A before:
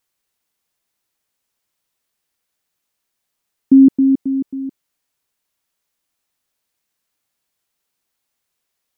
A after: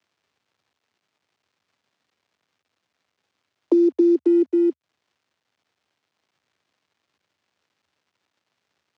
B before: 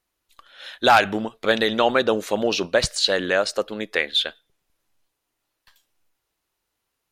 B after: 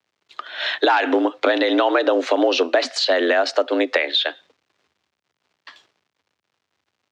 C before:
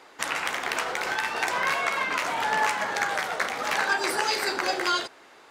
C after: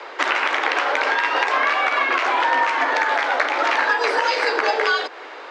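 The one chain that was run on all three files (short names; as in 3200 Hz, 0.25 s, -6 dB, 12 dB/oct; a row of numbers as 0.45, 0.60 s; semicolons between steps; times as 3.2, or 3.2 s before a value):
limiter -13.5 dBFS; high shelf 12000 Hz -11.5 dB; short-mantissa float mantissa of 4-bit; compressor 4:1, threshold -33 dBFS; steep high-pass 180 Hz 96 dB/oct; requantised 12-bit, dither none; air absorption 160 m; frequency shift +74 Hz; match loudness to -19 LUFS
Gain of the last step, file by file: +15.5, +18.0, +17.0 dB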